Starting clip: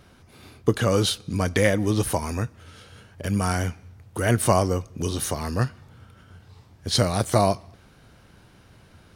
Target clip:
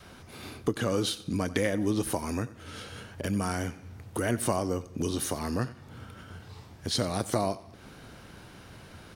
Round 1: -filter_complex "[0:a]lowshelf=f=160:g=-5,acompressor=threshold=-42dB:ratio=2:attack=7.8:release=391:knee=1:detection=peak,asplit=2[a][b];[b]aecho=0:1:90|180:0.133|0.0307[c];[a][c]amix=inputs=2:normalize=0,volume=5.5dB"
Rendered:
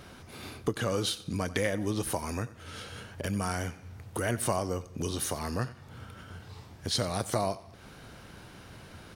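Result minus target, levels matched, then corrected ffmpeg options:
250 Hz band -2.5 dB
-filter_complex "[0:a]lowshelf=f=160:g=-5,acompressor=threshold=-42dB:ratio=2:attack=7.8:release=391:knee=1:detection=peak,adynamicequalizer=threshold=0.00224:dfrequency=280:dqfactor=1.4:tfrequency=280:tqfactor=1.4:attack=5:release=100:ratio=0.438:range=3:mode=boostabove:tftype=bell,asplit=2[a][b];[b]aecho=0:1:90|180:0.133|0.0307[c];[a][c]amix=inputs=2:normalize=0,volume=5.5dB"

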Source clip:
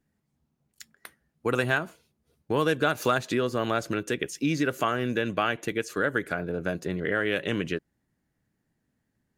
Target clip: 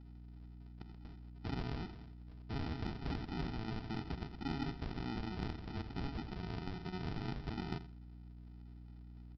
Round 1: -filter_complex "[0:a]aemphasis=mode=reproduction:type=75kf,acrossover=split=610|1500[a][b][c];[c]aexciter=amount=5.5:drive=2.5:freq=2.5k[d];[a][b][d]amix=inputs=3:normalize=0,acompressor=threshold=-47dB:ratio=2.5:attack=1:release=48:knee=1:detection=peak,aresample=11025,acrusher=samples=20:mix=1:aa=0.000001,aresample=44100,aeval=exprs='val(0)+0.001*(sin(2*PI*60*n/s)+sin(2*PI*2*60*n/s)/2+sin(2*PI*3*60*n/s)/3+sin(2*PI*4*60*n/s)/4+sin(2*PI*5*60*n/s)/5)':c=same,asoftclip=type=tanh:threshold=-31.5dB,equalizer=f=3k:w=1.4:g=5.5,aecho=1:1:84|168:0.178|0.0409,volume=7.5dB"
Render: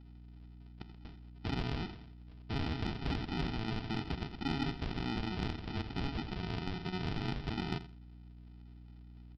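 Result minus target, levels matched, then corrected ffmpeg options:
compressor: peak gain reduction -4.5 dB; 4000 Hz band +3.0 dB
-filter_complex "[0:a]aemphasis=mode=reproduction:type=75kf,acrossover=split=610|1500[a][b][c];[c]aexciter=amount=5.5:drive=2.5:freq=2.5k[d];[a][b][d]amix=inputs=3:normalize=0,acompressor=threshold=-54.5dB:ratio=2.5:attack=1:release=48:knee=1:detection=peak,aresample=11025,acrusher=samples=20:mix=1:aa=0.000001,aresample=44100,aeval=exprs='val(0)+0.001*(sin(2*PI*60*n/s)+sin(2*PI*2*60*n/s)/2+sin(2*PI*3*60*n/s)/3+sin(2*PI*4*60*n/s)/4+sin(2*PI*5*60*n/s)/5)':c=same,asoftclip=type=tanh:threshold=-31.5dB,aecho=1:1:84|168:0.178|0.0409,volume=7.5dB"

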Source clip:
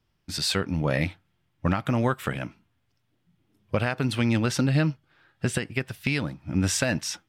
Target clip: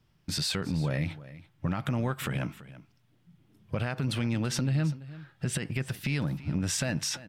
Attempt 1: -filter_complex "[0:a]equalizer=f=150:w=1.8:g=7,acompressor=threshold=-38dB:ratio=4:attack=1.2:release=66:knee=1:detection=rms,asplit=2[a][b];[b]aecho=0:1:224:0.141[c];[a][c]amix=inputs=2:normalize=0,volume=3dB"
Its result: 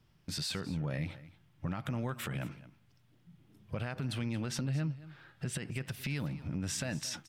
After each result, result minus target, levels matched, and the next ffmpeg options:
echo 0.111 s early; compressor: peak gain reduction +6.5 dB
-filter_complex "[0:a]equalizer=f=150:w=1.8:g=7,acompressor=threshold=-38dB:ratio=4:attack=1.2:release=66:knee=1:detection=rms,asplit=2[a][b];[b]aecho=0:1:335:0.141[c];[a][c]amix=inputs=2:normalize=0,volume=3dB"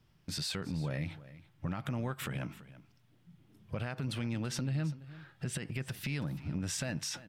compressor: peak gain reduction +6.5 dB
-filter_complex "[0:a]equalizer=f=150:w=1.8:g=7,acompressor=threshold=-29.5dB:ratio=4:attack=1.2:release=66:knee=1:detection=rms,asplit=2[a][b];[b]aecho=0:1:335:0.141[c];[a][c]amix=inputs=2:normalize=0,volume=3dB"

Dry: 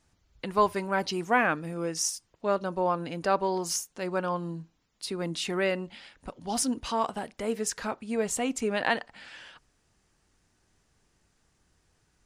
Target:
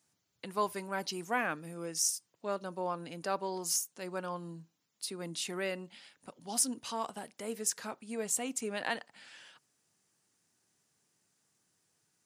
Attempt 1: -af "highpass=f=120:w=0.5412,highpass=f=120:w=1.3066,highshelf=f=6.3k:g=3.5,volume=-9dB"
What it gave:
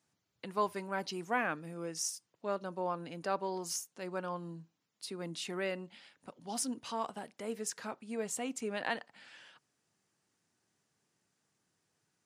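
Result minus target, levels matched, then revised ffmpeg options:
8000 Hz band -4.0 dB
-af "highpass=f=120:w=0.5412,highpass=f=120:w=1.3066,highshelf=f=6.3k:g=15,volume=-9dB"

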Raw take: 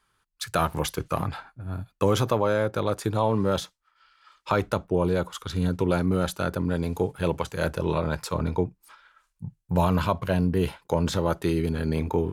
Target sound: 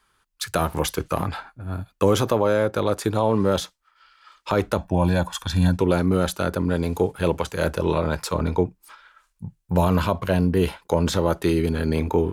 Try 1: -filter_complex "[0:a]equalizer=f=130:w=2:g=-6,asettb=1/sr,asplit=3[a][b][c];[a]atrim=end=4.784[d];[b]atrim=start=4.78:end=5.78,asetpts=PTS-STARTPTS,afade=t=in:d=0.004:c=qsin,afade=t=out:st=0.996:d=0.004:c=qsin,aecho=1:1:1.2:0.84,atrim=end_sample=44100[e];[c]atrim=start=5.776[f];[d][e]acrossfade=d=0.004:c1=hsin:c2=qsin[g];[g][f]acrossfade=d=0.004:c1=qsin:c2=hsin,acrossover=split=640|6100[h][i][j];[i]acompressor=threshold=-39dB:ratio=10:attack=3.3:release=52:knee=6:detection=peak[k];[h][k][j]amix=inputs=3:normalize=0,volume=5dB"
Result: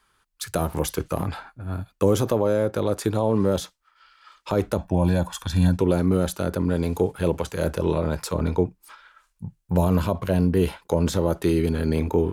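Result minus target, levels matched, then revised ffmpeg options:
compressor: peak gain reduction +9.5 dB
-filter_complex "[0:a]equalizer=f=130:w=2:g=-6,asettb=1/sr,asplit=3[a][b][c];[a]atrim=end=4.784[d];[b]atrim=start=4.78:end=5.78,asetpts=PTS-STARTPTS,afade=t=in:d=0.004:c=qsin,afade=t=out:st=0.996:d=0.004:c=qsin,aecho=1:1:1.2:0.84,atrim=end_sample=44100[e];[c]atrim=start=5.776[f];[d][e]acrossfade=d=0.004:c1=hsin:c2=qsin[g];[g][f]acrossfade=d=0.004:c1=qsin:c2=hsin,acrossover=split=640|6100[h][i][j];[i]acompressor=threshold=-28.5dB:ratio=10:attack=3.3:release=52:knee=6:detection=peak[k];[h][k][j]amix=inputs=3:normalize=0,volume=5dB"

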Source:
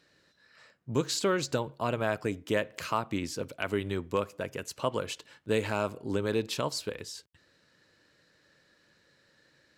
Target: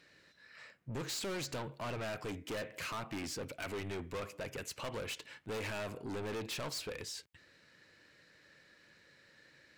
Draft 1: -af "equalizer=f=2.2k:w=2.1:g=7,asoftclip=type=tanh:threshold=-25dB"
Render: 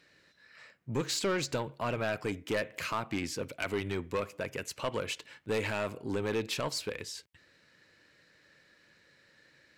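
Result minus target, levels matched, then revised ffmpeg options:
soft clip: distortion -7 dB
-af "equalizer=f=2.2k:w=2.1:g=7,asoftclip=type=tanh:threshold=-37dB"

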